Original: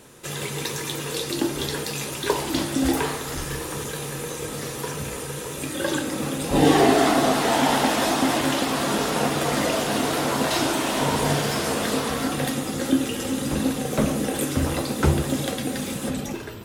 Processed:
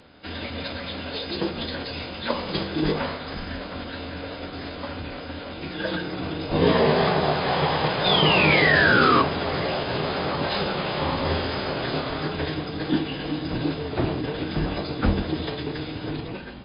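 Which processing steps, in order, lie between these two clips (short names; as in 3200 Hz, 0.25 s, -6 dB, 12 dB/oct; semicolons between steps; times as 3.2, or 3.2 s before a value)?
painted sound fall, 8.05–9.23, 1100–3700 Hz -16 dBFS; brick-wall FIR low-pass 8700 Hz; formant-preserving pitch shift -9.5 st; gain -1 dB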